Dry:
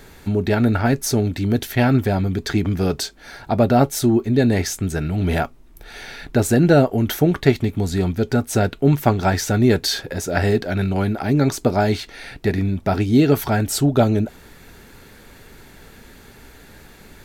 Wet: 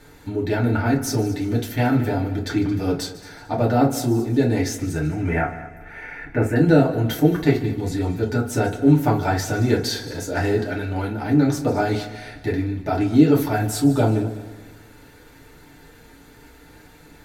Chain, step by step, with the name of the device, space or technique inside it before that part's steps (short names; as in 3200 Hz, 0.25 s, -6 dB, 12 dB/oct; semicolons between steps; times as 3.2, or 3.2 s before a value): 5.11–6.56 resonant high shelf 2900 Hz -11 dB, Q 3; multi-head tape echo (multi-head echo 74 ms, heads second and third, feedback 43%, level -17 dB; wow and flutter 9.2 cents); FDN reverb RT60 0.34 s, low-frequency decay 0.95×, high-frequency decay 0.6×, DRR -4 dB; gain -8.5 dB